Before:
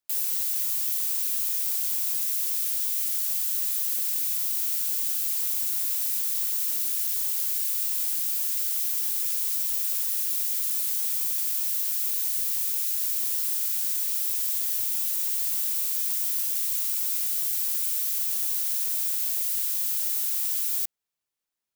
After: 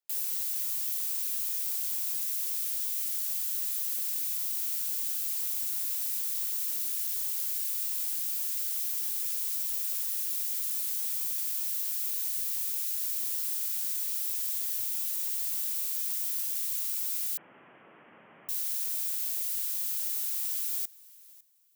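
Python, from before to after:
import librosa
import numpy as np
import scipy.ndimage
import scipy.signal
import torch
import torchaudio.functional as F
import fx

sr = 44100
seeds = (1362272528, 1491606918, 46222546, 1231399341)

y = fx.echo_feedback(x, sr, ms=553, feedback_pct=22, wet_db=-22)
y = fx.freq_invert(y, sr, carrier_hz=3600, at=(17.37, 18.49))
y = scipy.signal.sosfilt(scipy.signal.butter(4, 150.0, 'highpass', fs=sr, output='sos'), y)
y = y * librosa.db_to_amplitude(-5.0)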